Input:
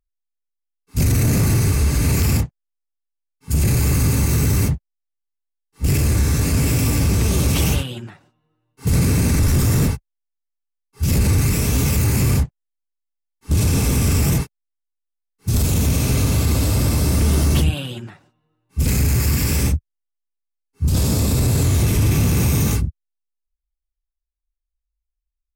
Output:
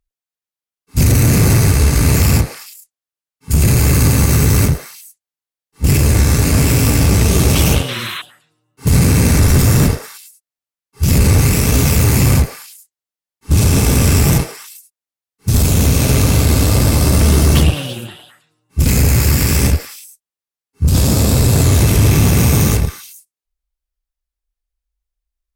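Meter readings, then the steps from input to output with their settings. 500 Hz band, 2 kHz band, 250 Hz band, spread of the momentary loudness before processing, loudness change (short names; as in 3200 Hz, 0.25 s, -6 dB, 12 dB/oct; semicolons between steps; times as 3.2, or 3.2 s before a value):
+7.5 dB, +7.0 dB, +5.5 dB, 8 LU, +5.5 dB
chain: delay with a stepping band-pass 0.108 s, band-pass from 580 Hz, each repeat 1.4 oct, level -2 dB; added harmonics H 3 -25 dB, 4 -23 dB, 7 -34 dB, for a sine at -7.5 dBFS; painted sound noise, 7.88–8.22, 950–4200 Hz -32 dBFS; gain +6.5 dB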